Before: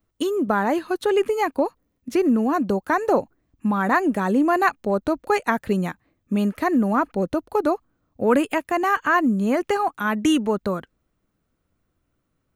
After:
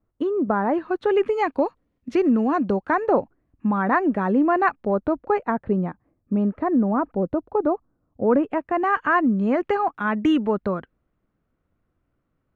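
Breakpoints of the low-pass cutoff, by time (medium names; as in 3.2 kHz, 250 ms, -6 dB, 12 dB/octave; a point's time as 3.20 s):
0.61 s 1.3 kHz
1.48 s 3.5 kHz
2.44 s 3.5 kHz
3.16 s 1.9 kHz
4.77 s 1.9 kHz
5.65 s 1 kHz
8.45 s 1 kHz
8.95 s 2.2 kHz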